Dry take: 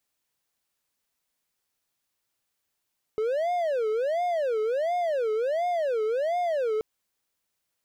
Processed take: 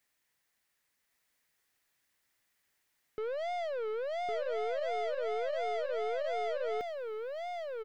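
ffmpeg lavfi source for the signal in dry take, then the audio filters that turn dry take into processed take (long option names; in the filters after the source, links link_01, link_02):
-f lavfi -i "aevalsrc='0.0841*(1-4*abs(mod((571.5*t-142.5/(2*PI*1.4)*sin(2*PI*1.4*t))+0.25,1)-0.5))':duration=3.63:sample_rate=44100"
-filter_complex "[0:a]equalizer=frequency=1900:width=2.6:gain=9.5,aeval=exprs='(tanh(50.1*val(0)+0.2)-tanh(0.2))/50.1':channel_layout=same,asplit=2[link_01][link_02];[link_02]aecho=0:1:1107:0.668[link_03];[link_01][link_03]amix=inputs=2:normalize=0"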